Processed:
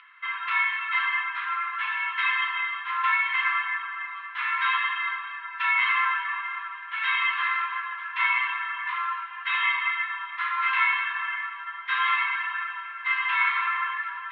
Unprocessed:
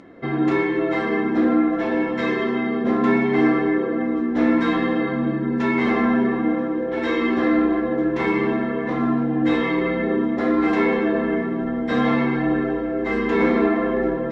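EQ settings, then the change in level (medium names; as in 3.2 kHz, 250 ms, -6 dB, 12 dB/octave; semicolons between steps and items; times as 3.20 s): rippled Chebyshev high-pass 980 Hz, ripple 3 dB; resonant low-pass 2.8 kHz, resonance Q 3.3; distance through air 170 m; +3.0 dB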